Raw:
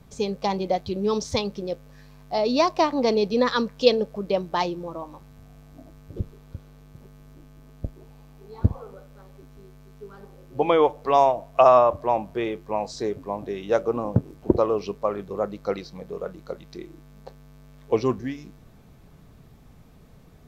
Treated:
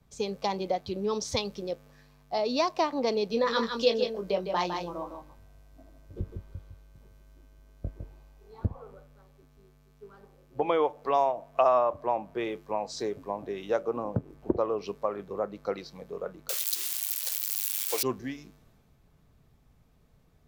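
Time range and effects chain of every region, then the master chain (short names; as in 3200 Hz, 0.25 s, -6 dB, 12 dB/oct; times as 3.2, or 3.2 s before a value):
3.27–8.53 doubler 22 ms -6 dB + echo 0.157 s -7 dB
16.49–18.03 switching spikes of -15.5 dBFS + HPF 560 Hz
whole clip: low shelf 210 Hz -8 dB; compressor 2:1, threshold -29 dBFS; three-band expander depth 40%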